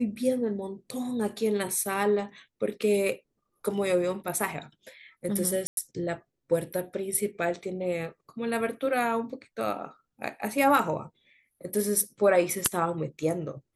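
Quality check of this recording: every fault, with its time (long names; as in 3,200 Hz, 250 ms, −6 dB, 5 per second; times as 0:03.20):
0:05.67–0:05.77: drop-out 102 ms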